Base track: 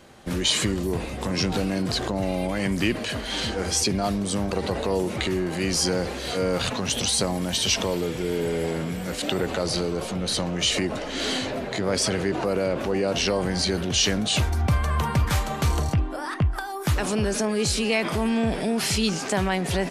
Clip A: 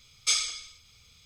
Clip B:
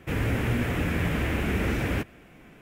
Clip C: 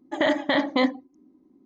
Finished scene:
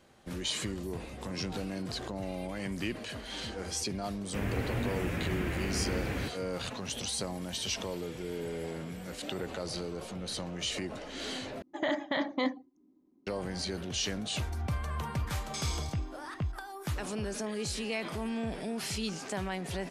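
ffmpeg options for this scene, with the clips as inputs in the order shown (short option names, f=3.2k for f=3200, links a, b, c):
-filter_complex "[3:a]asplit=2[a][b];[0:a]volume=-11.5dB[c];[1:a]alimiter=limit=-22.5dB:level=0:latency=1:release=71[d];[b]aderivative[e];[c]asplit=2[f][g];[f]atrim=end=11.624[h];[a]atrim=end=1.65,asetpts=PTS-STARTPTS,volume=-9dB[i];[g]atrim=start=13.266[j];[2:a]atrim=end=2.61,asetpts=PTS-STARTPTS,volume=-7.5dB,afade=t=in:d=0.004:c=hsin,afade=t=out:st=2.606:d=0.004:c=hsin,adelay=4260[k];[d]atrim=end=1.25,asetpts=PTS-STARTPTS,volume=-6.5dB,afade=t=in:d=0.004:c=hsin,afade=t=out:st=1.246:d=0.004:c=hsin,adelay=15270[l];[e]atrim=end=1.65,asetpts=PTS-STARTPTS,volume=-16dB,afade=t=in:d=0.004:c=hsin,afade=t=out:st=1.646:d=0.004:c=hsin,adelay=17250[m];[h][i]acrossfade=d=0.004:c1=hsin:c2=hsin[n];[n][j]acrossfade=d=0.004:c1=hsin:c2=hsin[o];[o][k][l][m]amix=inputs=4:normalize=0"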